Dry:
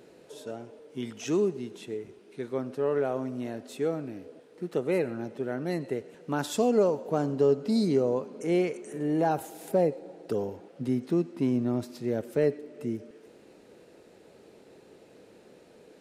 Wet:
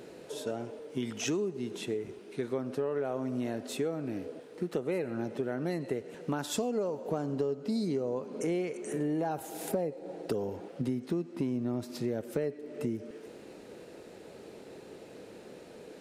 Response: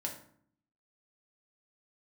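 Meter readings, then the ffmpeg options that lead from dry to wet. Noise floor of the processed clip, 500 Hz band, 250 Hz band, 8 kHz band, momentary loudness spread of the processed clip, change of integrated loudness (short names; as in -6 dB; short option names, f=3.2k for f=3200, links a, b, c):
-50 dBFS, -5.5 dB, -4.0 dB, +2.0 dB, 17 LU, -5.0 dB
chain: -af "acompressor=threshold=-35dB:ratio=6,volume=5.5dB"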